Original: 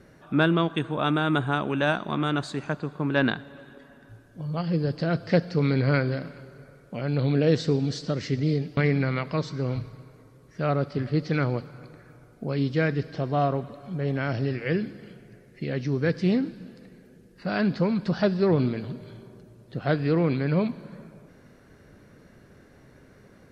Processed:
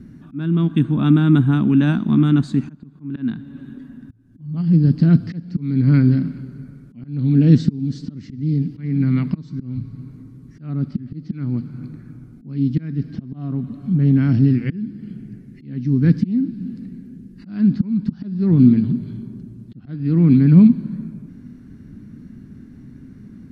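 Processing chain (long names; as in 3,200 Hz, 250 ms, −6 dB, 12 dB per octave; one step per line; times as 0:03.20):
volume swells 510 ms
low shelf with overshoot 360 Hz +13.5 dB, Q 3
level −2.5 dB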